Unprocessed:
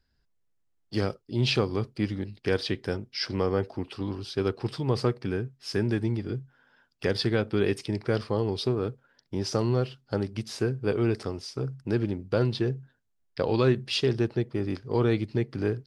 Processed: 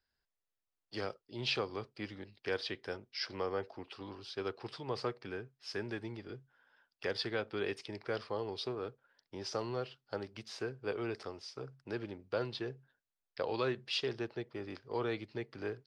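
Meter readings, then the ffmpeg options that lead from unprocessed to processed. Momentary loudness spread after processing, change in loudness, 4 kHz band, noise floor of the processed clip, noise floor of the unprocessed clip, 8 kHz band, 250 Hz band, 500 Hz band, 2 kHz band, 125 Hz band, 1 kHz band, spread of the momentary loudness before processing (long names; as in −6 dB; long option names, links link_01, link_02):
11 LU, −11.0 dB, −7.0 dB, below −85 dBFS, −72 dBFS, −10.5 dB, −14.5 dB, −10.0 dB, −6.0 dB, −19.0 dB, −6.5 dB, 8 LU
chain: -filter_complex "[0:a]acrossover=split=430 6300:gain=0.224 1 0.224[link_01][link_02][link_03];[link_01][link_02][link_03]amix=inputs=3:normalize=0,volume=-6dB"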